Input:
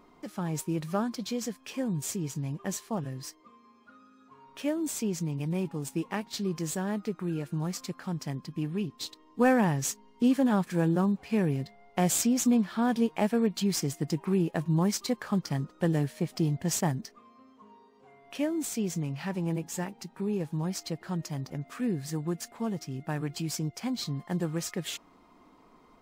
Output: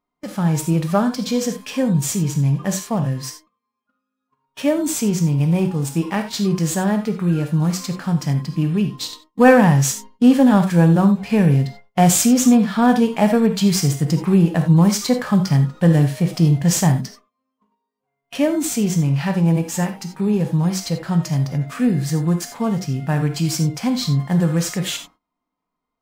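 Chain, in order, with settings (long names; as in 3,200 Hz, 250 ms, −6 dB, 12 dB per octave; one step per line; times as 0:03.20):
noise gate −49 dBFS, range −35 dB
parametric band 350 Hz −7 dB 0.59 octaves
reverb whose tail is shaped and stops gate 110 ms flat, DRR 9 dB
in parallel at −7.5 dB: soft clipping −29.5 dBFS, distortion −9 dB
on the sum: harmonic and percussive parts rebalanced harmonic +6 dB
level +6 dB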